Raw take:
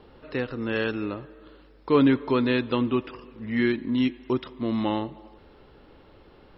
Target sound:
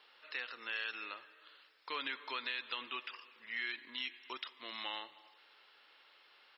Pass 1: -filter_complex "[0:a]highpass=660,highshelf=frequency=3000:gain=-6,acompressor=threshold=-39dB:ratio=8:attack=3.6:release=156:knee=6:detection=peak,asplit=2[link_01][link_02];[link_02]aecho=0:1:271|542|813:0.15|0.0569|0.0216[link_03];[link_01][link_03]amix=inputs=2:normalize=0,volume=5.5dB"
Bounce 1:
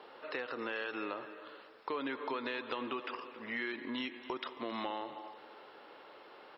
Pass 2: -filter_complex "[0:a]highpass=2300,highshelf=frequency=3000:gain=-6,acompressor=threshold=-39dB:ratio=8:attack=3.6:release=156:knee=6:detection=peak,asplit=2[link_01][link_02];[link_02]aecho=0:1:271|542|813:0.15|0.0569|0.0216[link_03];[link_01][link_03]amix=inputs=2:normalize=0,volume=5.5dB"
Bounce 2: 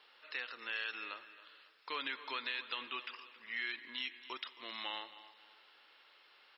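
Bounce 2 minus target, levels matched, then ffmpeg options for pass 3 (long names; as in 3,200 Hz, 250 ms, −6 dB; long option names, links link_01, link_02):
echo-to-direct +12 dB
-filter_complex "[0:a]highpass=2300,highshelf=frequency=3000:gain=-6,acompressor=threshold=-39dB:ratio=8:attack=3.6:release=156:knee=6:detection=peak,asplit=2[link_01][link_02];[link_02]aecho=0:1:271|542:0.0376|0.0143[link_03];[link_01][link_03]amix=inputs=2:normalize=0,volume=5.5dB"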